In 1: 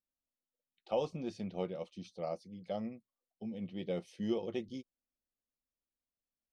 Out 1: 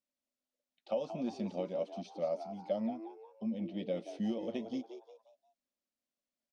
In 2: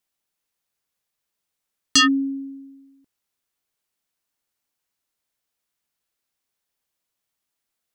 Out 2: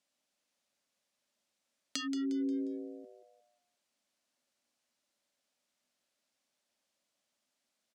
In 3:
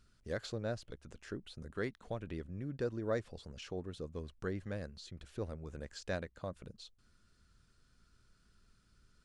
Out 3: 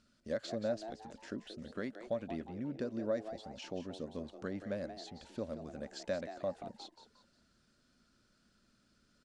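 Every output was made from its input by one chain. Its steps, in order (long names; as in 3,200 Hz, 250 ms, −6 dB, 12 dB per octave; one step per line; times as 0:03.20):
low-pass filter 6,700 Hz 12 dB per octave
spectral tilt +2 dB per octave
downward compressor 10 to 1, threshold −37 dBFS
hollow resonant body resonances 240/570 Hz, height 14 dB, ringing for 35 ms
echo with shifted repeats 178 ms, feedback 38%, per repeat +110 Hz, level −11 dB
level −2.5 dB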